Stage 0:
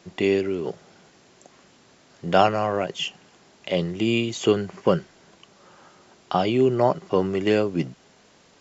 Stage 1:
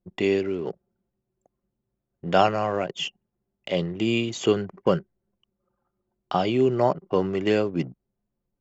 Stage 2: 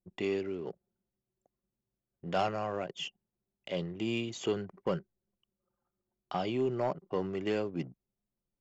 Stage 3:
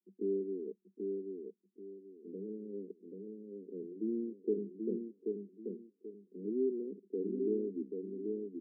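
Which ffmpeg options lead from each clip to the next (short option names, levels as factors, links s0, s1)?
-af "anlmdn=1.58,volume=0.841"
-af "asoftclip=type=tanh:threshold=0.251,volume=0.355"
-filter_complex "[0:a]asuperpass=centerf=300:order=20:qfactor=1.1,asplit=2[s0][s1];[s1]aecho=0:1:784|1568|2352|3136:0.631|0.177|0.0495|0.0139[s2];[s0][s2]amix=inputs=2:normalize=0,volume=0.841"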